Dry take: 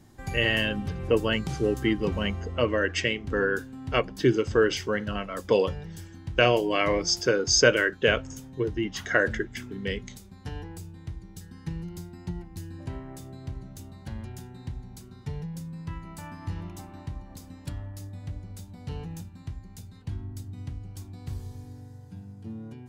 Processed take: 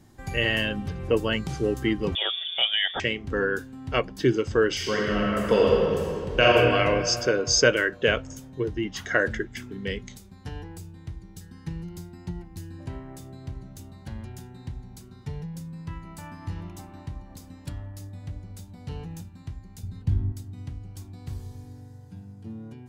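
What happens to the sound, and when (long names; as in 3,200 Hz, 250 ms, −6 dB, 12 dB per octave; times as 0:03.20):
0:02.15–0:03.00: voice inversion scrambler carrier 3,500 Hz
0:04.72–0:06.53: thrown reverb, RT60 2.6 s, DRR −3.5 dB
0:19.83–0:20.32: low-shelf EQ 260 Hz +12 dB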